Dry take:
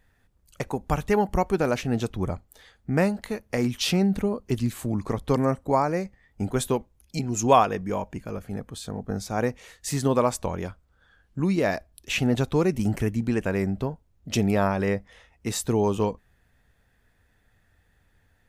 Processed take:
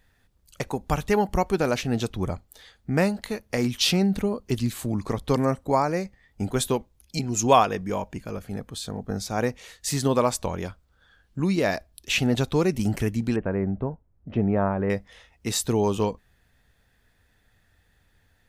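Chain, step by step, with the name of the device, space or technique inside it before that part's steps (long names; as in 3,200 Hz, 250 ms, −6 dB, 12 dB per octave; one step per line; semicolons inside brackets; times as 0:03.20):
presence and air boost (parametric band 4,100 Hz +5 dB 1.2 octaves; high-shelf EQ 9,200 Hz +4 dB)
0:13.36–0:14.90: Bessel low-pass filter 1,200 Hz, order 4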